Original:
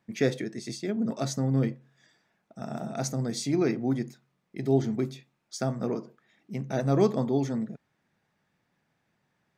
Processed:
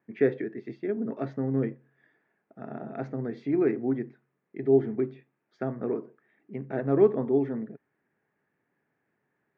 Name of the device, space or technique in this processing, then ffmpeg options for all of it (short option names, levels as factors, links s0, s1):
bass cabinet: -af "highpass=83,equalizer=f=98:t=q:w=4:g=-5,equalizer=f=180:t=q:w=4:g=-4,equalizer=f=290:t=q:w=4:g=5,equalizer=f=410:t=q:w=4:g=9,equalizer=f=1700:t=q:w=4:g=5,lowpass=f=2400:w=0.5412,lowpass=f=2400:w=1.3066,volume=0.631"